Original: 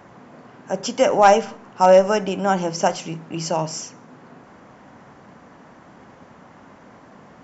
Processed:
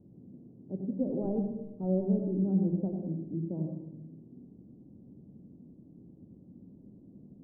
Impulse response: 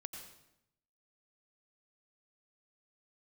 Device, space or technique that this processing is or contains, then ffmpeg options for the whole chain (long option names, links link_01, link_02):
next room: -filter_complex "[0:a]lowpass=frequency=330:width=0.5412,lowpass=frequency=330:width=1.3066[link_01];[1:a]atrim=start_sample=2205[link_02];[link_01][link_02]afir=irnorm=-1:irlink=0"